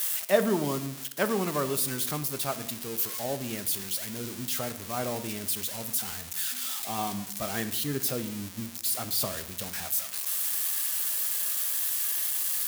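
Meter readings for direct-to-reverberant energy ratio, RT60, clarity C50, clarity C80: 10.5 dB, 0.85 s, 13.5 dB, 16.0 dB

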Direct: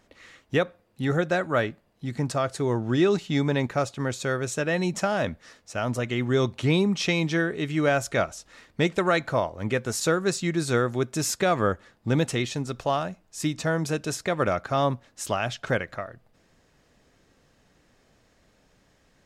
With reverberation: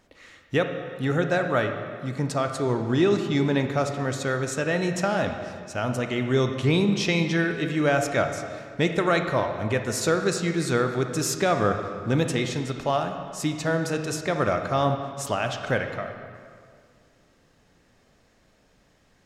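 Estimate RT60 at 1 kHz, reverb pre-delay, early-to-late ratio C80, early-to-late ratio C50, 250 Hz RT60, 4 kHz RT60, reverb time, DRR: 2.1 s, 28 ms, 8.0 dB, 6.5 dB, 2.1 s, 1.6 s, 2.1 s, 5.5 dB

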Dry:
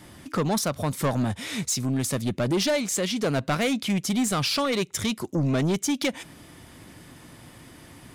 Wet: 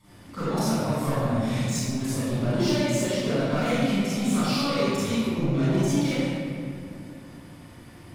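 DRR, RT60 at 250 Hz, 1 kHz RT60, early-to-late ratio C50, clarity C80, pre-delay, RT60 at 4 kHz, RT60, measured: -14.0 dB, 3.3 s, 2.2 s, -8.5 dB, -3.5 dB, 31 ms, 1.4 s, 2.4 s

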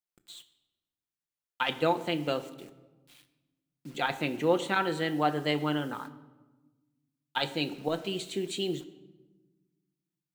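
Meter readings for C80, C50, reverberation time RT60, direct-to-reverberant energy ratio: 16.5 dB, 14.5 dB, 1.2 s, 7.0 dB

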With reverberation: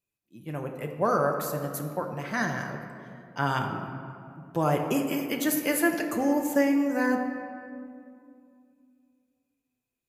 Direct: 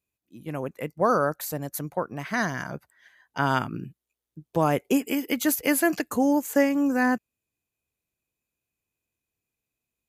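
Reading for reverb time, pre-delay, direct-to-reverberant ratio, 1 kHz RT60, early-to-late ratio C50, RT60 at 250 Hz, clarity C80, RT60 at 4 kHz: 2.5 s, 5 ms, 2.0 dB, 2.3 s, 5.5 dB, 3.0 s, 6.5 dB, 1.3 s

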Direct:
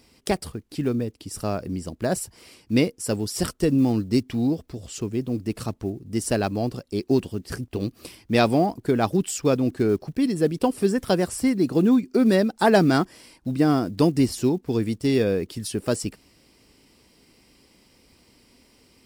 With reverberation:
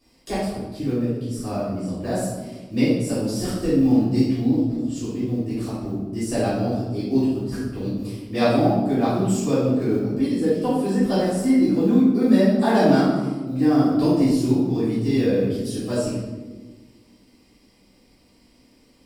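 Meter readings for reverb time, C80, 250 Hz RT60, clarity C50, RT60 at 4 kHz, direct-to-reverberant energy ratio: 1.3 s, 2.5 dB, 2.0 s, -1.0 dB, 0.75 s, -13.0 dB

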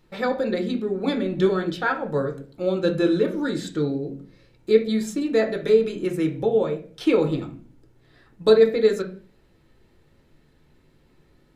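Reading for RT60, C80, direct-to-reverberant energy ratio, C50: 0.40 s, 17.0 dB, 3.5 dB, 12.5 dB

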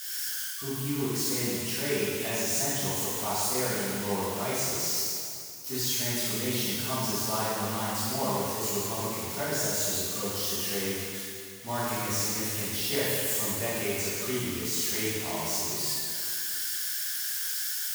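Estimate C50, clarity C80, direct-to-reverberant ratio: -4.0 dB, -1.5 dB, -10.0 dB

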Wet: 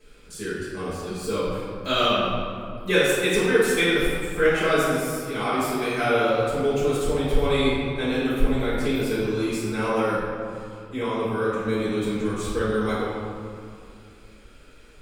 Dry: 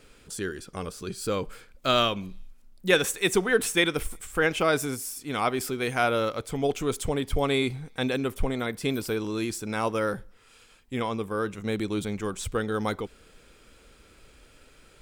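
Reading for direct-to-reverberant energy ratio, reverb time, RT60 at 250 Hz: -11.0 dB, 2.3 s, 2.8 s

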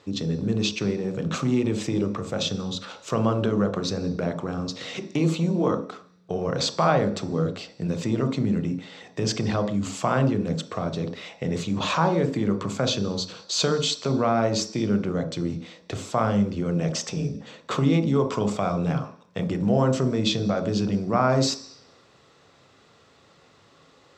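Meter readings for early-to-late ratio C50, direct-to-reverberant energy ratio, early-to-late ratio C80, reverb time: 11.0 dB, 7.0 dB, 15.5 dB, 0.50 s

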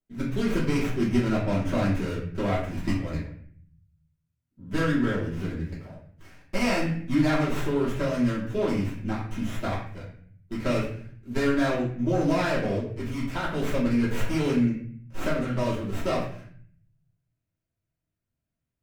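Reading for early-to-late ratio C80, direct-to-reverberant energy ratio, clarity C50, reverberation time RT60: 7.5 dB, -9.0 dB, 3.5 dB, 0.55 s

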